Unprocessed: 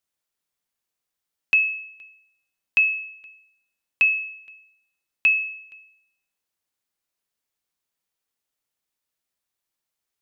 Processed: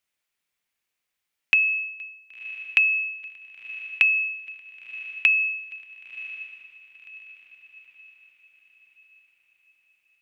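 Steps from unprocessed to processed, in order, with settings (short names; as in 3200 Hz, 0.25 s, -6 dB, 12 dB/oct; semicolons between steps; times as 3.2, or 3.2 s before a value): bell 2300 Hz +9 dB 1 oct; compressor 6:1, threshold -17 dBFS, peak gain reduction 10 dB; on a send: diffused feedback echo 1.048 s, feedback 45%, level -15.5 dB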